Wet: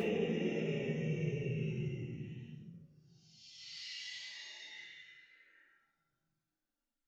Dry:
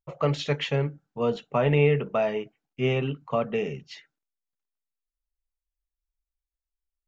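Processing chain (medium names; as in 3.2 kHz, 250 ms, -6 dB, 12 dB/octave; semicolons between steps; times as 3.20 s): Paulstretch 13×, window 0.05 s, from 3.62 s; two-slope reverb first 0.31 s, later 1.6 s, from -26 dB, DRR 1 dB; trim -7 dB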